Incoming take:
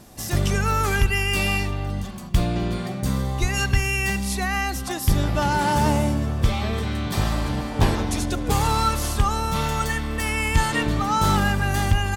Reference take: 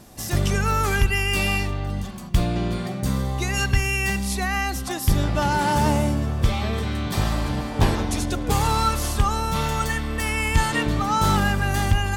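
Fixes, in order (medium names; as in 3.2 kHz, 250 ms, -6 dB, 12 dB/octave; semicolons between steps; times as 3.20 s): 3.40–3.52 s: high-pass 140 Hz 24 dB/octave; inverse comb 254 ms -24 dB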